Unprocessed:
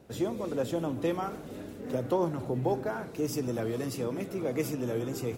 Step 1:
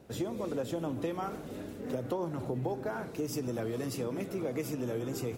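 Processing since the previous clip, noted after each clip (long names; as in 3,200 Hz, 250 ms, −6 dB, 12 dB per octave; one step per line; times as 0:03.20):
downward compressor, threshold −30 dBFS, peak gain reduction 7.5 dB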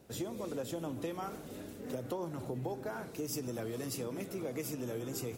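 high-shelf EQ 4,200 Hz +8.5 dB
level −4.5 dB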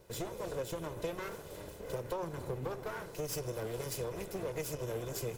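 lower of the sound and its delayed copy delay 2 ms
level +1.5 dB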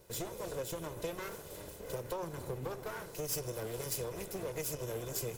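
high-shelf EQ 5,200 Hz +7.5 dB
level −1.5 dB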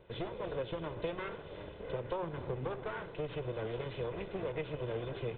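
downsampling to 8,000 Hz
level +2 dB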